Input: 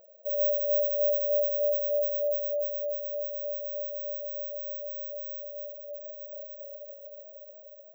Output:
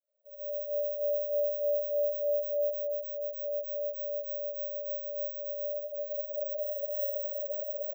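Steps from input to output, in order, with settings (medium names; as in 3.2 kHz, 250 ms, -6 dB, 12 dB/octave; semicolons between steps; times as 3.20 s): fade-in on the opening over 1.91 s; recorder AGC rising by 6.2 dB/s; bass shelf 420 Hz -9.5 dB; peak limiter -28.5 dBFS, peak gain reduction 4.5 dB; delay 87 ms -6.5 dB; 2.69–3.36 s: dynamic bell 610 Hz, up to -4 dB, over -50 dBFS, Q 2.5; reverberation RT60 1.6 s, pre-delay 16 ms, DRR -5.5 dB; trim -7 dB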